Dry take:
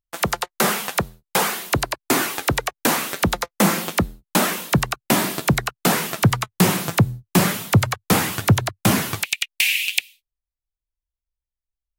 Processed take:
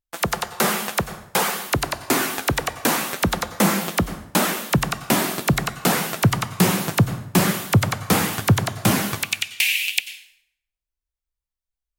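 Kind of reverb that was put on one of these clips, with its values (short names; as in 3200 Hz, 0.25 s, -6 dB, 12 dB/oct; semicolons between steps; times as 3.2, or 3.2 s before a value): plate-style reverb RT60 0.72 s, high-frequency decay 0.8×, pre-delay 80 ms, DRR 11 dB; gain -1 dB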